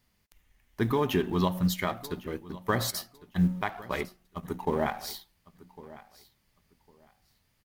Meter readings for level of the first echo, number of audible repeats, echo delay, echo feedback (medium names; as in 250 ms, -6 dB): -19.0 dB, 2, 1104 ms, 20%